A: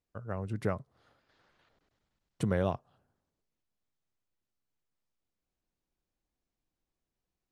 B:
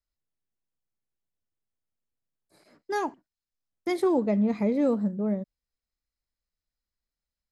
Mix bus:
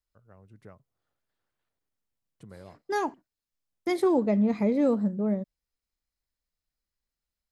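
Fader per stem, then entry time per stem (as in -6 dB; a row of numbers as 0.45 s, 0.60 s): -18.0 dB, +0.5 dB; 0.00 s, 0.00 s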